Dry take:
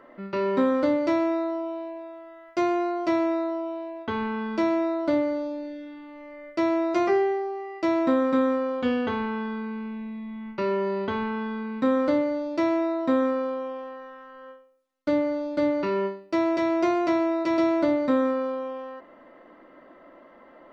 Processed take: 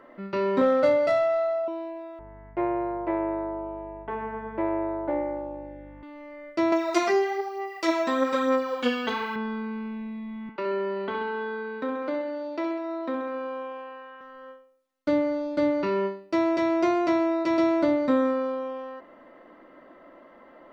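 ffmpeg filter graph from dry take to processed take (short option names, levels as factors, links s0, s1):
-filter_complex "[0:a]asettb=1/sr,asplit=3[s0][s1][s2];[s0]atrim=end=0.614[s3];[s1]atrim=start=0.61:end=1.68,asetpts=PTS-STARTPTS,afade=t=in:d=0.004:c=qsin,afade=t=out:st=1.066:d=0.004:c=qsin,highpass=120,aecho=1:1:1.5:1,atrim=end_sample=47187,adynamicsmooth=sensitivity=4:basefreq=3400[s4];[s2]atrim=start=1.676[s5];[s3][s4]acrossfade=d=0.004:c1=hsin:c2=qsin[s6];[s6][s5]acrossfade=d=0.004:c1=qsin:c2=hsin,asettb=1/sr,asplit=3[s7][s8][s9];[s7]atrim=end=2.194[s10];[s8]atrim=start=2.19:end=6.03,asetpts=PTS-STARTPTS,afade=t=in:d=0.004:c=qsin,afade=t=out:st=3.836:d=0.004:c=qsin,tremolo=f=230:d=0.71,highpass=220,equalizer=f=250:t=q:w=4:g=-10,equalizer=f=380:t=q:w=4:g=4,equalizer=f=890:t=q:w=4:g=4,equalizer=f=1300:t=q:w=4:g=-7,lowpass=f=2100:w=0.5412,lowpass=f=2100:w=1.3066,aeval=exprs='val(0)+0.00447*(sin(2*PI*50*n/s)+sin(2*PI*2*50*n/s)/2+sin(2*PI*3*50*n/s)/3+sin(2*PI*4*50*n/s)/4+sin(2*PI*5*50*n/s)/5)':c=same[s11];[s9]atrim=start=6.026[s12];[s10][s11]acrossfade=d=0.004:c1=hsin:c2=qsin[s13];[s13][s12]acrossfade=d=0.004:c1=qsin:c2=hsin,asettb=1/sr,asplit=3[s14][s15][s16];[s14]atrim=end=6.724[s17];[s15]atrim=start=6.72:end=9.36,asetpts=PTS-STARTPTS,afade=t=in:d=0.004:c=qsin,afade=t=out:st=2.636:d=0.004:c=qsin,aemphasis=mode=production:type=riaa,aphaser=in_gain=1:out_gain=1:delay=4.9:decay=0.51:speed=1.1:type=sinusoidal[s18];[s16]atrim=start=9.356[s19];[s17][s18]acrossfade=d=0.004:c1=hsin:c2=qsin[s20];[s20][s19]acrossfade=d=0.004:c1=qsin:c2=hsin,asettb=1/sr,asplit=3[s21][s22][s23];[s21]atrim=end=10.494[s24];[s22]atrim=start=10.49:end=14.21,asetpts=PTS-STARTPTS,afade=t=in:d=0.004:c=qsin,afade=t=out:st=3.716:d=0.004:c=qsin,acompressor=threshold=0.0501:ratio=2:attack=3.2:release=140:knee=1:detection=peak,acrossover=split=260 4400:gain=0.141 1 0.2[s25][s26][s27];[s25][s26][s27]amix=inputs=3:normalize=0,aecho=1:1:66|132|198|264|330|396|462:0.447|0.259|0.15|0.0872|0.0505|0.0293|0.017,atrim=end_sample=164052[s28];[s23]atrim=start=14.206[s29];[s24][s28]acrossfade=d=0.004:c1=hsin:c2=qsin[s30];[s30][s29]acrossfade=d=0.004:c1=qsin:c2=hsin"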